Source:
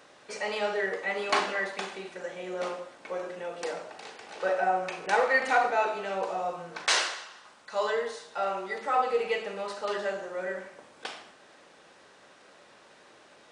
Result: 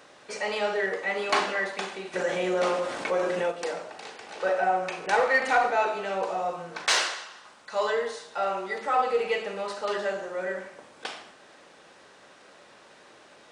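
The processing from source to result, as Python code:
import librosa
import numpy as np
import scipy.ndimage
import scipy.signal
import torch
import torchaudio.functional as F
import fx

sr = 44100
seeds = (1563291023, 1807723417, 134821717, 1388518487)

p1 = 10.0 ** (-24.5 / 20.0) * np.tanh(x / 10.0 ** (-24.5 / 20.0))
p2 = x + (p1 * librosa.db_to_amplitude(-9.0))
y = fx.env_flatten(p2, sr, amount_pct=50, at=(2.13, 3.5), fade=0.02)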